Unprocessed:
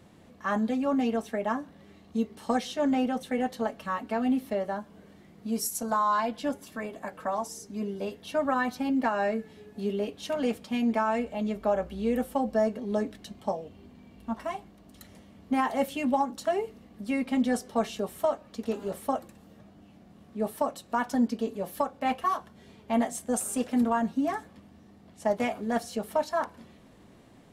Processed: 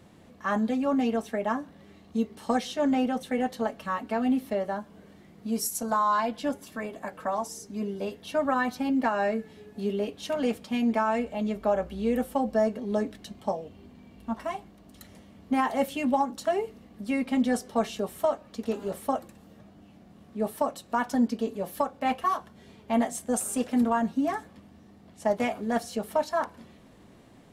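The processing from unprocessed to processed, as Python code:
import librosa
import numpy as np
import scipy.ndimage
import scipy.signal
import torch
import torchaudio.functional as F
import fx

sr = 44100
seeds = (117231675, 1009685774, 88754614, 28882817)

y = F.gain(torch.from_numpy(x), 1.0).numpy()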